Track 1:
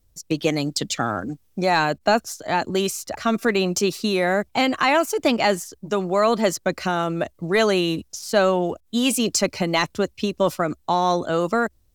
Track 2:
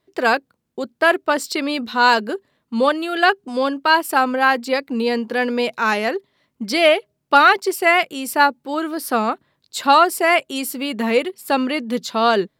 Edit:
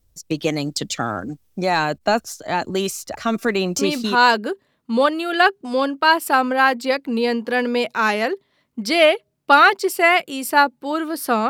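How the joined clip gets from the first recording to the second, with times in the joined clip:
track 1
3.97 s: go over to track 2 from 1.80 s, crossfade 0.36 s logarithmic

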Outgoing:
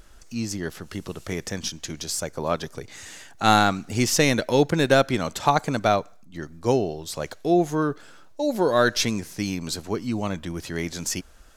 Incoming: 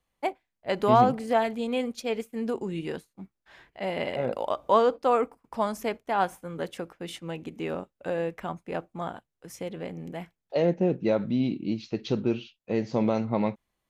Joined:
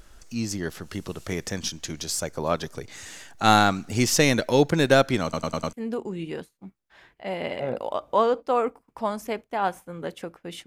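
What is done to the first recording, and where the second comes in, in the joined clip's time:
outgoing
5.23 s: stutter in place 0.10 s, 5 plays
5.73 s: go over to incoming from 2.29 s

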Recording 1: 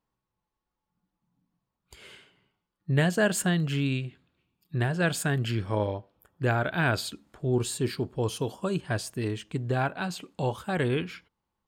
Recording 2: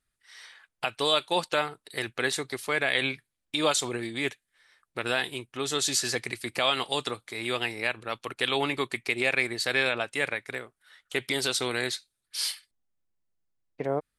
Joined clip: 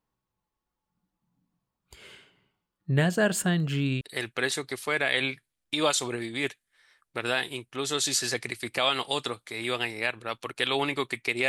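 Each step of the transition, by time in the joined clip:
recording 1
4.01 s: go over to recording 2 from 1.82 s

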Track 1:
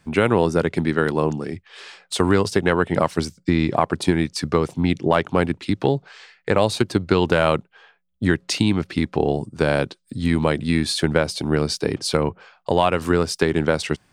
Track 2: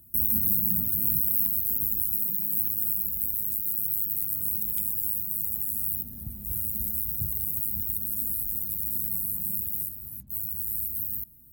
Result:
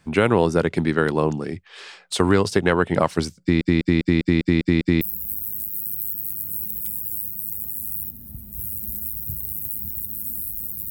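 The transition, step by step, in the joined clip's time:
track 1
3.41 s: stutter in place 0.20 s, 8 plays
5.01 s: go over to track 2 from 2.93 s

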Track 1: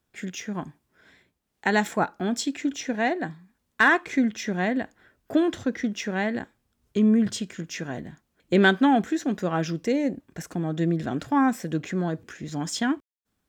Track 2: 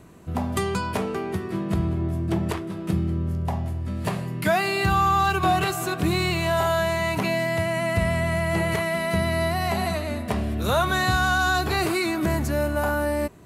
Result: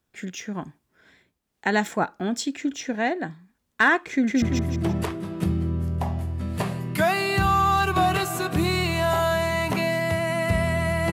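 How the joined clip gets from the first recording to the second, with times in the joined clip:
track 1
4.10–4.42 s: echo throw 170 ms, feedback 40%, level -0.5 dB
4.42 s: go over to track 2 from 1.89 s

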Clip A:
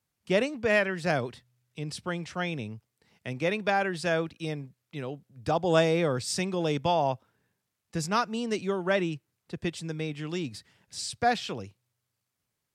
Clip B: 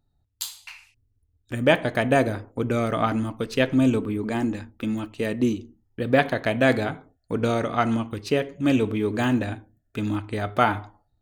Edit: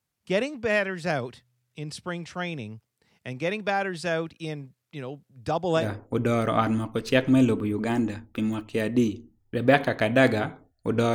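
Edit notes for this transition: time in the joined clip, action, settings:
clip A
5.81 s: go over to clip B from 2.26 s, crossfade 0.12 s

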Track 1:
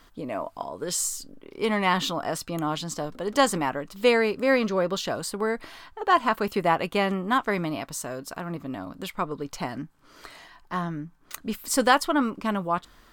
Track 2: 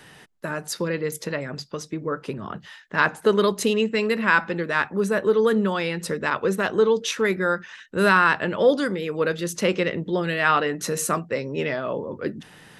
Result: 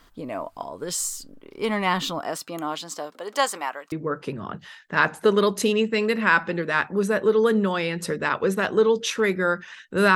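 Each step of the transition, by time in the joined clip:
track 1
2.20–3.92 s: high-pass 200 Hz -> 830 Hz
3.92 s: go over to track 2 from 1.93 s

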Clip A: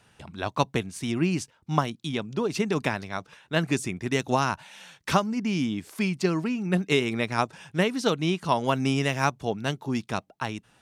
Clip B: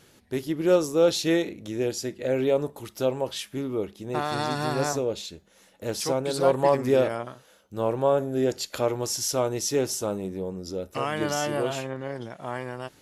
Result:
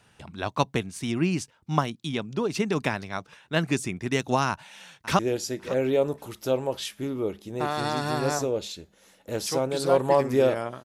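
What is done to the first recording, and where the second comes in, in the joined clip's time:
clip A
4.49–5.19 s: echo throw 550 ms, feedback 20%, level -17 dB
5.19 s: go over to clip B from 1.73 s

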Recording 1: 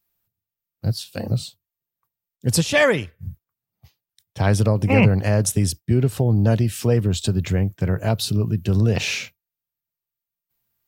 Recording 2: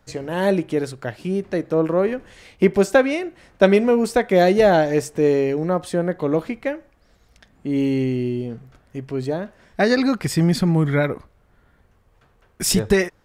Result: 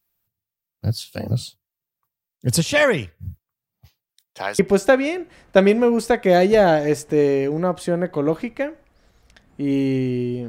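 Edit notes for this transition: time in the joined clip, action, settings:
recording 1
4.11–4.59 s: high-pass 180 Hz -> 1 kHz
4.59 s: go over to recording 2 from 2.65 s

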